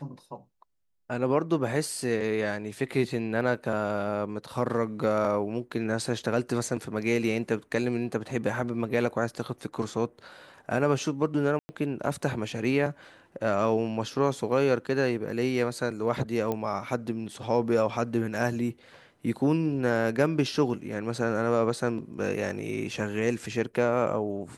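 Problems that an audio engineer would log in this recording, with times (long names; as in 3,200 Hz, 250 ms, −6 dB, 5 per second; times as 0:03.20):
0:11.59–0:11.69: drop-out 100 ms
0:16.52: click −17 dBFS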